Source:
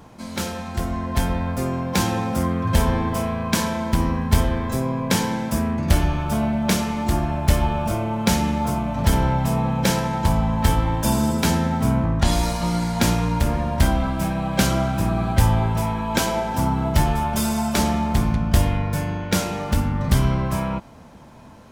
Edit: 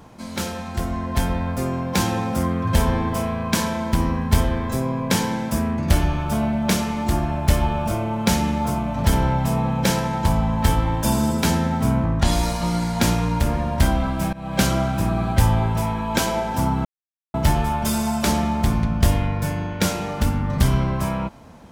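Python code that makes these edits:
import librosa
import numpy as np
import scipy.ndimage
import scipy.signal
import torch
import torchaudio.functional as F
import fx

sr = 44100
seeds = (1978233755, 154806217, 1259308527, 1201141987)

y = fx.edit(x, sr, fx.fade_in_from(start_s=14.33, length_s=0.27, floor_db=-19.0),
    fx.insert_silence(at_s=16.85, length_s=0.49), tone=tone)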